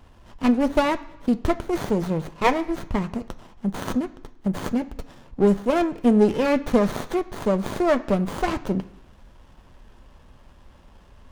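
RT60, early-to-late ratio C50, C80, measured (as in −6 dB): 1.0 s, 16.5 dB, 19.5 dB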